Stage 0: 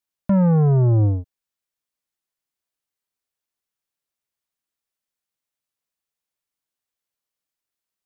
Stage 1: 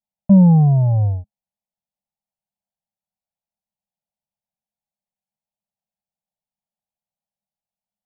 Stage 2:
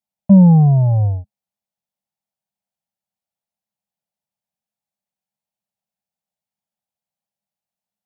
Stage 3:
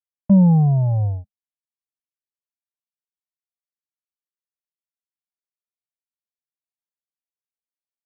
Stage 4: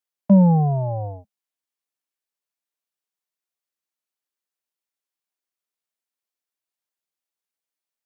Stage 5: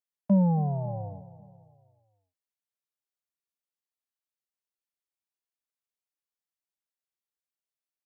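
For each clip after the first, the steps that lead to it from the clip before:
drawn EQ curve 120 Hz 0 dB, 210 Hz +9 dB, 320 Hz −28 dB, 570 Hz +1 dB, 830 Hz +5 dB, 1,300 Hz −24 dB, 2,400 Hz −13 dB
high-pass filter 69 Hz; level +2 dB
noise gate with hold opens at −17 dBFS; level −4.5 dB
high-pass filter 250 Hz 12 dB per octave; level +5.5 dB
repeating echo 273 ms, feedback 48%, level −17 dB; level −8.5 dB

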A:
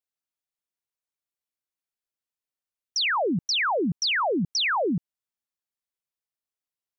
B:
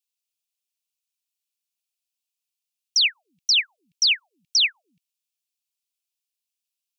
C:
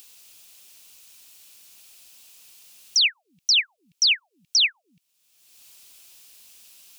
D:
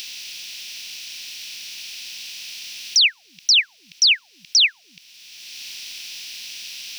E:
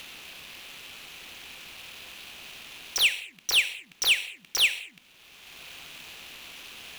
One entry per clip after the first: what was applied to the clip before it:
elliptic high-pass filter 2,500 Hz, stop band 50 dB; level +7.5 dB
upward compression, threshold −23 dBFS
compressor on every frequency bin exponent 0.6; level +3 dB
running median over 9 samples; reverb whose tail is shaped and stops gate 250 ms falling, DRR 8.5 dB; level −2.5 dB

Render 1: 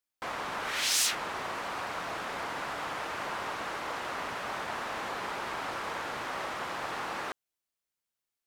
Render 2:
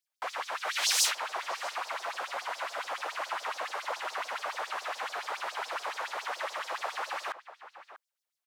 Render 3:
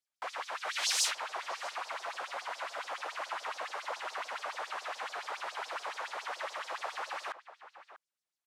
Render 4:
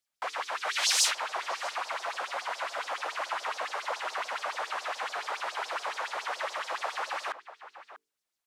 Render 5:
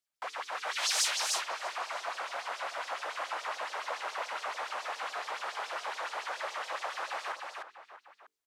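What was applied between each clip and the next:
auto-filter high-pass sine 7.1 Hz 540–5,700 Hz; slap from a distant wall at 110 metres, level −13 dB; level −1.5 dB
low-pass filter 11,000 Hz 12 dB per octave; level −3.5 dB
mains-hum notches 50/100/150/200/250/300/350/400/450 Hz; level +5 dB
single-tap delay 304 ms −3.5 dB; level −4.5 dB

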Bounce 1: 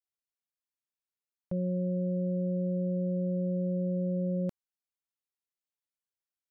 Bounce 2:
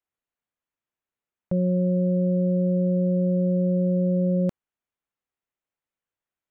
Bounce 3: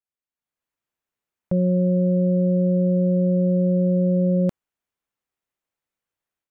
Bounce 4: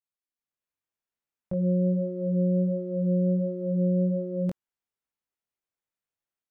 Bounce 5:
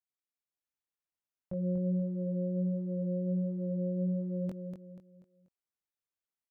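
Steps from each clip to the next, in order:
adaptive Wiener filter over 9 samples; level +8.5 dB
automatic gain control gain up to 11.5 dB; level −8.5 dB
chorus effect 1.4 Hz, delay 19.5 ms, depth 3 ms; level −4 dB
repeating echo 242 ms, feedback 37%, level −6.5 dB; level −7.5 dB

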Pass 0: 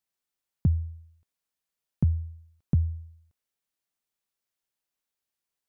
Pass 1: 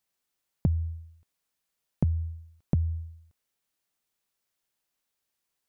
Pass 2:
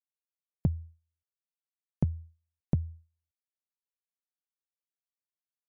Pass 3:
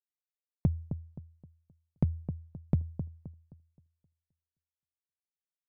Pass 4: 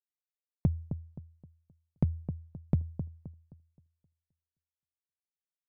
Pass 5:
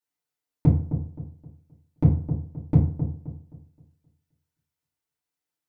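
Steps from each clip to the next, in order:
downward compressor, threshold −27 dBFS, peak gain reduction 8.5 dB; level +5 dB
expander for the loud parts 2.5 to 1, over −43 dBFS
running median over 25 samples; delay with a low-pass on its return 262 ms, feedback 34%, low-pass 1,100 Hz, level −9 dB
no processing that can be heard
feedback delay network reverb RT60 0.46 s, low-frequency decay 1×, high-frequency decay 0.6×, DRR −8.5 dB

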